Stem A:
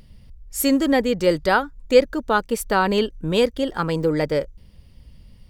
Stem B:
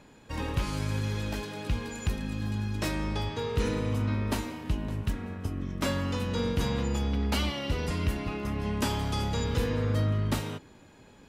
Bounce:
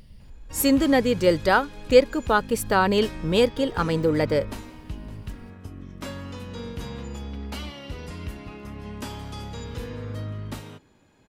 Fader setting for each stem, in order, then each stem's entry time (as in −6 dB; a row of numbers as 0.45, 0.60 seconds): −1.0, −6.0 decibels; 0.00, 0.20 seconds